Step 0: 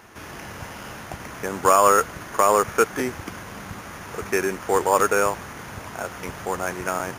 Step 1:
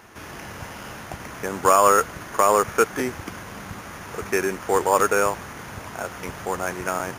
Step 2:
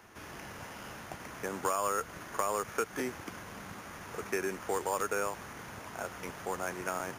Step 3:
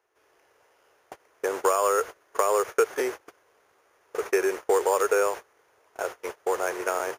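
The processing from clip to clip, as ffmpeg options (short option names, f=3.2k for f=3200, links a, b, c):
-af anull
-filter_complex "[0:a]acrossover=split=160|2000[a][b][c];[a]acompressor=threshold=-45dB:ratio=4[d];[b]acompressor=threshold=-22dB:ratio=4[e];[c]acompressor=threshold=-30dB:ratio=4[f];[d][e][f]amix=inputs=3:normalize=0,volume=-8dB"
-af "lowshelf=f=300:t=q:w=3:g=-12,agate=range=-25dB:threshold=-38dB:ratio=16:detection=peak,volume=6dB"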